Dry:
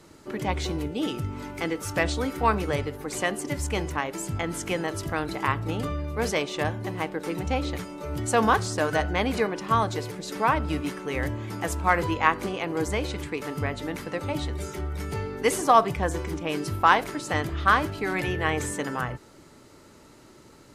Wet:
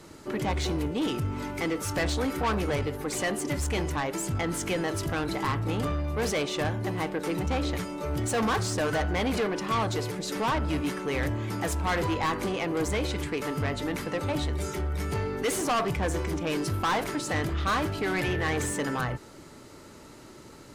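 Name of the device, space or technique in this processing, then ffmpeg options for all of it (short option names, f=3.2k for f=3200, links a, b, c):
saturation between pre-emphasis and de-emphasis: -af "highshelf=f=8.5k:g=9,asoftclip=type=tanh:threshold=-26.5dB,highshelf=f=8.5k:g=-9,volume=3.5dB"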